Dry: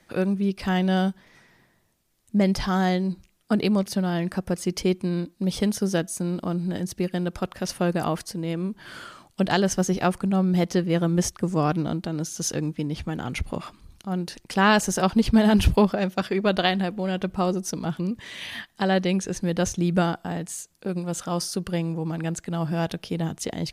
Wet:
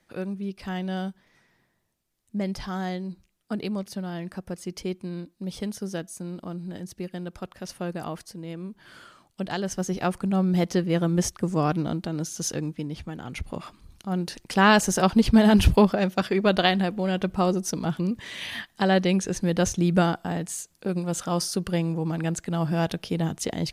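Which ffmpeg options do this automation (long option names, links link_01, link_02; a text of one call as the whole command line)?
ffmpeg -i in.wav -af "volume=7dB,afade=type=in:start_time=9.58:duration=0.82:silence=0.446684,afade=type=out:start_time=12.32:duration=0.88:silence=0.501187,afade=type=in:start_time=13.2:duration=1.09:silence=0.398107" out.wav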